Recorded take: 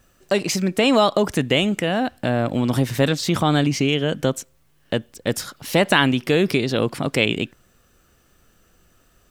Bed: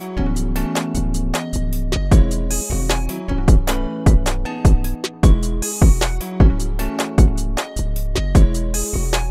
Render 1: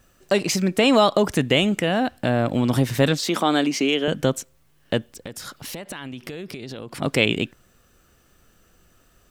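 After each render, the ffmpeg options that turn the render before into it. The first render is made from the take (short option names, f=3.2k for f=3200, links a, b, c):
-filter_complex "[0:a]asettb=1/sr,asplit=3[a][b][c];[a]atrim=end=3.194[d];[b]atrim=start=3.19:end=4.08,asetpts=PTS-STARTPTS,afade=t=in:d=0.004:c=qsin,afade=t=out:st=0.886:d=0.004:c=qsin,highpass=f=230:w=0.5412,highpass=f=230:w=1.3066[e];[c]atrim=start=4.076[f];[d][e]acrossfade=d=0.004:c1=hsin:c2=qsin[g];[g][f]acrossfade=d=0.004:c1=qsin:c2=hsin,asettb=1/sr,asplit=3[h][i][j];[h]atrim=end=5.134[k];[i]atrim=start=5.13:end=7.02,asetpts=PTS-STARTPTS,afade=t=in:d=0.004:c=qsin,afade=t=out:st=1.886:d=0.004:c=qsin,acompressor=threshold=-30dB:ratio=16:attack=3.2:release=140:knee=1:detection=peak[l];[j]atrim=start=7.016[m];[k][l]acrossfade=d=0.004:c1=hsin:c2=qsin[n];[n][m]acrossfade=d=0.004:c1=qsin:c2=hsin"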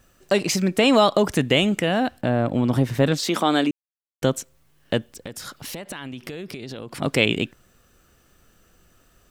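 -filter_complex "[0:a]asettb=1/sr,asplit=3[a][b][c];[a]atrim=end=2.214[d];[b]atrim=start=2.21:end=3.12,asetpts=PTS-STARTPTS,afade=t=in:d=0.004:c=qsin,afade=t=out:st=0.906:d=0.004:c=qsin,highshelf=f=2.2k:g=-8.5[e];[c]atrim=start=3.116[f];[d][e]acrossfade=d=0.004:c1=hsin:c2=qsin[g];[g][f]acrossfade=d=0.004:c1=qsin:c2=hsin,asplit=3[h][i][j];[h]atrim=end=3.71,asetpts=PTS-STARTPTS,afade=t=out:st=3.706:d=0.004:c=hsin[k];[i]atrim=start=3.71:end=4.22,asetpts=PTS-STARTPTS,volume=0[l];[j]atrim=start=4.22,asetpts=PTS-STARTPTS,afade=t=in:d=0.004:c=hsin[m];[k][l][m]concat=n=3:v=0:a=1"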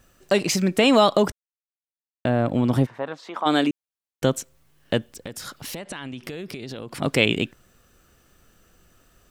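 -filter_complex "[0:a]asplit=3[a][b][c];[a]afade=t=out:st=2.85:d=0.02[d];[b]bandpass=f=960:t=q:w=2,afade=t=in:st=2.85:d=0.02,afade=t=out:st=3.45:d=0.02[e];[c]afade=t=in:st=3.45:d=0.02[f];[d][e][f]amix=inputs=3:normalize=0,asettb=1/sr,asplit=3[g][h][i];[g]atrim=end=5.794[j];[h]atrim=start=5.79:end=6.23,asetpts=PTS-STARTPTS,afade=t=in:d=0.004:c=qsin,afade=t=out:st=0.436:d=0.004:c=qsin,lowpass=f=10k:w=0.5412,lowpass=f=10k:w=1.3066[k];[i]atrim=start=6.226[l];[j][k]acrossfade=d=0.004:c1=hsin:c2=qsin[m];[m][l]acrossfade=d=0.004:c1=qsin:c2=hsin,asplit=3[n][o][p];[n]atrim=end=1.32,asetpts=PTS-STARTPTS,afade=t=out:st=1.316:d=0.004:c=hsin[q];[o]atrim=start=1.32:end=2.25,asetpts=PTS-STARTPTS,volume=0[r];[p]atrim=start=2.25,asetpts=PTS-STARTPTS,afade=t=in:d=0.004:c=hsin[s];[q][r][s]concat=n=3:v=0:a=1"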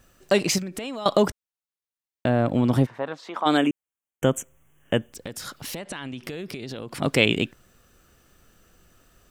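-filter_complex "[0:a]asettb=1/sr,asplit=3[a][b][c];[a]atrim=end=0.584[d];[b]atrim=start=0.58:end=1.06,asetpts=PTS-STARTPTS,afade=t=in:d=0.004:c=qsin,afade=t=out:st=0.476:d=0.004:c=qsin,acompressor=threshold=-29dB:ratio=12:attack=3.2:release=140:knee=1:detection=peak[e];[c]atrim=start=1.056[f];[d][e]acrossfade=d=0.004:c1=hsin:c2=qsin[g];[g][f]acrossfade=d=0.004:c1=qsin:c2=hsin,asettb=1/sr,asplit=3[h][i][j];[h]atrim=end=3.574[k];[i]atrim=start=3.57:end=5.13,asetpts=PTS-STARTPTS,afade=t=in:d=0.004:c=qsin,afade=t=out:st=1.556:d=0.004:c=qsin,asuperstop=centerf=4500:order=8:qfactor=1.6[l];[j]atrim=start=5.126[m];[k][l]acrossfade=d=0.004:c1=hsin:c2=qsin[n];[n][m]acrossfade=d=0.004:c1=qsin:c2=hsin"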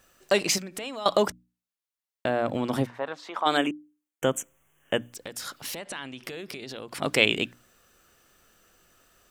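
-af "lowshelf=f=280:g=-11,bandreject=f=60:t=h:w=6,bandreject=f=120:t=h:w=6,bandreject=f=180:t=h:w=6,bandreject=f=240:t=h:w=6,bandreject=f=300:t=h:w=6"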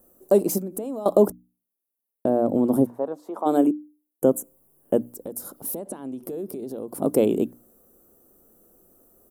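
-af "firequalizer=gain_entry='entry(140,0);entry(210,9);entry(370,9);entry(1900,-23);entry(2700,-23);entry(4700,-17);entry(11000,10)':delay=0.05:min_phase=1"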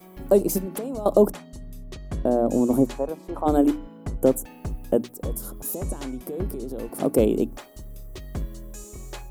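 -filter_complex "[1:a]volume=-19dB[a];[0:a][a]amix=inputs=2:normalize=0"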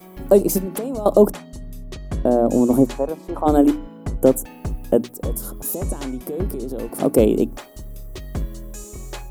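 -af "volume=4.5dB,alimiter=limit=-1dB:level=0:latency=1"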